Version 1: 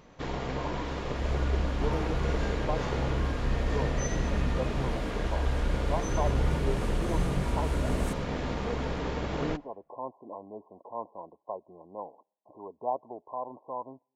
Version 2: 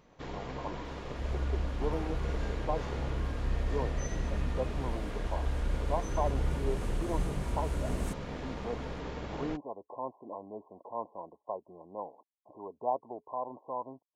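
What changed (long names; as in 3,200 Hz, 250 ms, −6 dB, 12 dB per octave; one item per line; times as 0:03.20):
first sound −6.0 dB
reverb: off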